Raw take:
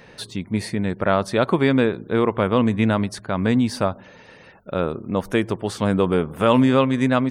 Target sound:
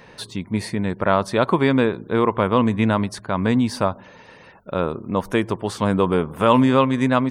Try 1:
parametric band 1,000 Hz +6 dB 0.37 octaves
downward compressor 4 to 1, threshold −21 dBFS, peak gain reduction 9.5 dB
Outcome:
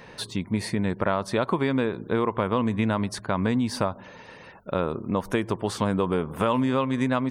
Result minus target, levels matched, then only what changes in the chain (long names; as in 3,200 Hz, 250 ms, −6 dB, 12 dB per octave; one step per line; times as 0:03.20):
downward compressor: peak gain reduction +9.5 dB
remove: downward compressor 4 to 1, threshold −21 dBFS, peak gain reduction 9.5 dB